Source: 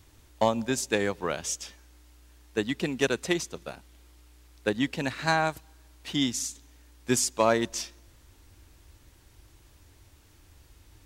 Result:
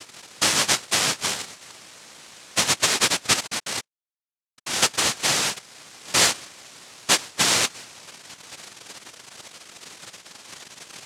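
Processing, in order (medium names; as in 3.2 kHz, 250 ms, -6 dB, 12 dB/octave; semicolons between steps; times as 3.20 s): in parallel at +1.5 dB: compression, threshold -36 dBFS, peak gain reduction 17.5 dB; 3.33–4.82 s: on the sum: Schmitt trigger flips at -38.5 dBFS; tilt EQ -4.5 dB/octave; noise-vocoded speech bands 1; trim -3 dB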